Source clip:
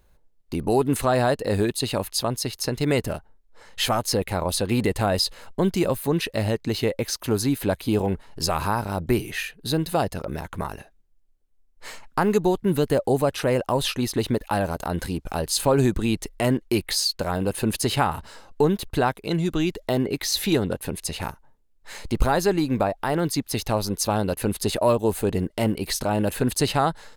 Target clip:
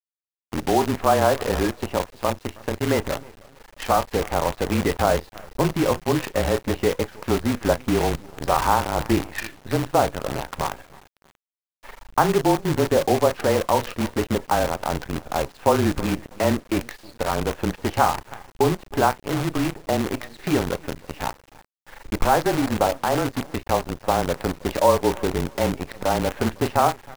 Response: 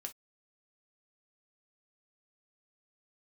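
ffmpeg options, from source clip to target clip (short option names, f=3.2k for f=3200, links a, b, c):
-filter_complex "[0:a]lowpass=f=2.4k:w=0.5412,lowpass=f=2.4k:w=1.3066,equalizer=f=890:w=0.86:g=7.5,asplit=2[a][b];[b]adelay=33,volume=-13dB[c];[a][c]amix=inputs=2:normalize=0,dynaudnorm=f=550:g=21:m=14dB,agate=range=-33dB:threshold=-48dB:ratio=3:detection=peak,afreqshift=-28,aecho=1:1:317|634|951:0.119|0.0357|0.0107,asplit=2[d][e];[1:a]atrim=start_sample=2205[f];[e][f]afir=irnorm=-1:irlink=0,volume=-0.5dB[g];[d][g]amix=inputs=2:normalize=0,acrusher=bits=4:dc=4:mix=0:aa=0.000001,volume=-6.5dB"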